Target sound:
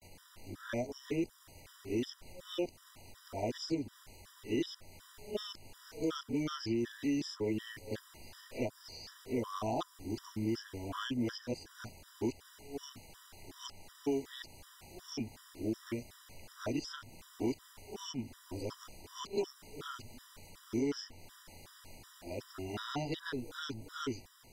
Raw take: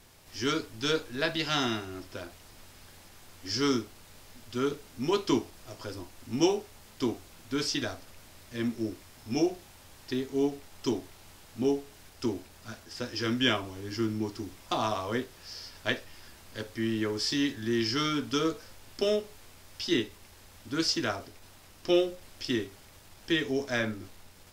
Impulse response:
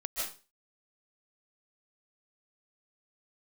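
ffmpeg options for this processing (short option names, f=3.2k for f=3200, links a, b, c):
-filter_complex "[0:a]areverse,acrossover=split=1000|5400[a][b][c];[a]acompressor=threshold=-30dB:ratio=4[d];[b]acompressor=threshold=-45dB:ratio=4[e];[c]acompressor=threshold=-51dB:ratio=4[f];[d][e][f]amix=inputs=3:normalize=0,afftfilt=real='re*gt(sin(2*PI*2.7*pts/sr)*(1-2*mod(floor(b*sr/1024/980),2)),0)':imag='im*gt(sin(2*PI*2.7*pts/sr)*(1-2*mod(floor(b*sr/1024/980),2)),0)':win_size=1024:overlap=0.75"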